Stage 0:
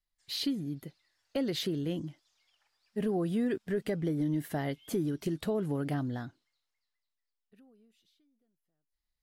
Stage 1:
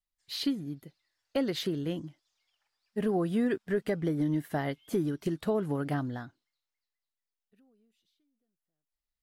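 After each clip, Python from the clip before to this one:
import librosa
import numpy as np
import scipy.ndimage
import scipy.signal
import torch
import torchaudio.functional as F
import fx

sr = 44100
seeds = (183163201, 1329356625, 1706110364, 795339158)

y = fx.dynamic_eq(x, sr, hz=1200.0, q=0.89, threshold_db=-50.0, ratio=4.0, max_db=5)
y = fx.upward_expand(y, sr, threshold_db=-42.0, expansion=1.5)
y = y * librosa.db_to_amplitude(2.5)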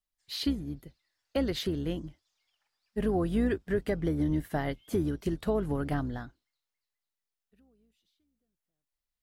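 y = fx.octave_divider(x, sr, octaves=2, level_db=-6.0)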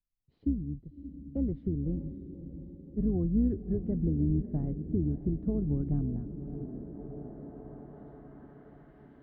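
y = fx.echo_diffused(x, sr, ms=608, feedback_pct=61, wet_db=-12)
y = fx.filter_sweep_lowpass(y, sr, from_hz=220.0, to_hz=2400.0, start_s=6.17, end_s=9.16, q=0.86)
y = y * librosa.db_to_amplitude(3.0)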